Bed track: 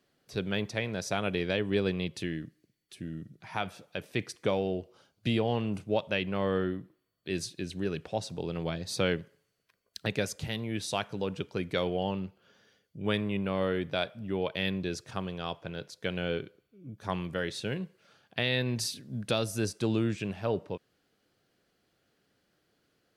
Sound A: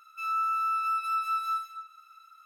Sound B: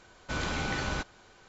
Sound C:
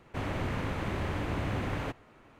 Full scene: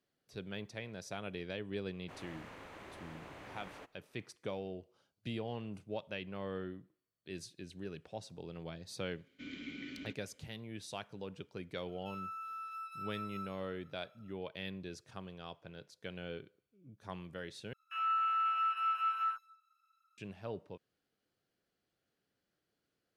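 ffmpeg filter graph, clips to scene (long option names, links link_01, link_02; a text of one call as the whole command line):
ffmpeg -i bed.wav -i cue0.wav -i cue1.wav -i cue2.wav -filter_complex "[1:a]asplit=2[link_01][link_02];[0:a]volume=-12dB[link_03];[3:a]bass=frequency=250:gain=-13,treble=frequency=4000:gain=2[link_04];[2:a]asplit=3[link_05][link_06][link_07];[link_05]bandpass=frequency=270:width_type=q:width=8,volume=0dB[link_08];[link_06]bandpass=frequency=2290:width_type=q:width=8,volume=-6dB[link_09];[link_07]bandpass=frequency=3010:width_type=q:width=8,volume=-9dB[link_10];[link_08][link_09][link_10]amix=inputs=3:normalize=0[link_11];[link_02]afwtdn=0.02[link_12];[link_03]asplit=2[link_13][link_14];[link_13]atrim=end=17.734[link_15];[link_12]atrim=end=2.45,asetpts=PTS-STARTPTS,volume=-4dB[link_16];[link_14]atrim=start=20.176[link_17];[link_04]atrim=end=2.39,asetpts=PTS-STARTPTS,volume=-14dB,afade=type=in:duration=0.004:curve=hsin,afade=type=out:start_time=2.386:duration=0.004:curve=hsin,adelay=1940[link_18];[link_11]atrim=end=1.48,asetpts=PTS-STARTPTS,volume=-1dB,afade=type=in:duration=0.004:curve=hsin,afade=type=out:start_time=1.476:duration=0.004:curve=hsin,adelay=9100[link_19];[link_01]atrim=end=2.45,asetpts=PTS-STARTPTS,volume=-16dB,afade=type=in:duration=0.004:curve=hsin,afade=type=out:start_time=2.446:duration=0.004:curve=hsin,adelay=11880[link_20];[link_15][link_16]acrossfade=duration=0.004:curve1=hsin:curve2=hsin[link_21];[link_21][link_17]acrossfade=duration=0.004:curve1=hsin:curve2=hsin[link_22];[link_22][link_18][link_19][link_20]amix=inputs=4:normalize=0" out.wav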